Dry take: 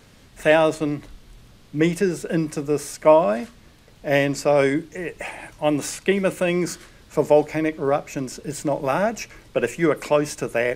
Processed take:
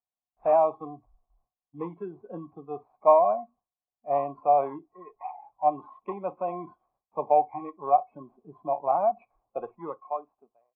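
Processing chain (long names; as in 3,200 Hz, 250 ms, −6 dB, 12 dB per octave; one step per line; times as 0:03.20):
fade-out on the ending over 1.31 s
noise gate with hold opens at −37 dBFS
in parallel at −7.5 dB: sample-rate reduction 3,000 Hz, jitter 0%
on the sum: formant resonators in series a
noise reduction from a noise print of the clip's start 20 dB
level +5.5 dB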